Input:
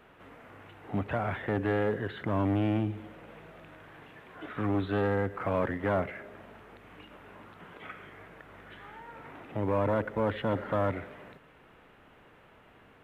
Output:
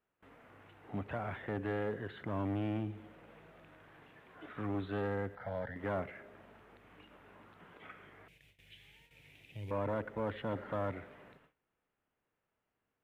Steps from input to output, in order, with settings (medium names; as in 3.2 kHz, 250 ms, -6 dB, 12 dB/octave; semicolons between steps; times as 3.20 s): 8.28–9.71 s: FFT filter 140 Hz 0 dB, 230 Hz -13 dB, 510 Hz -12 dB, 1.3 kHz -25 dB, 2.4 kHz +7 dB, 5.3 kHz +9 dB; gate with hold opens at -43 dBFS; 5.35–5.76 s: static phaser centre 1.7 kHz, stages 8; trim -8 dB